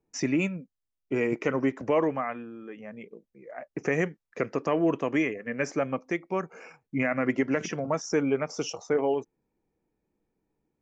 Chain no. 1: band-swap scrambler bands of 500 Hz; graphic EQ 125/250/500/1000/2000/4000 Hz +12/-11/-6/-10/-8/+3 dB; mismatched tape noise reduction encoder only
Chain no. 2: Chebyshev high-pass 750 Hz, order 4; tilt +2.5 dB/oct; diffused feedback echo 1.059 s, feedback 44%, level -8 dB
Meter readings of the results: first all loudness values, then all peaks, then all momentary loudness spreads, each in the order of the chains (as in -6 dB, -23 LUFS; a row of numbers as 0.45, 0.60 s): -33.0, -34.0 LUFS; -12.0, -15.0 dBFS; 15, 12 LU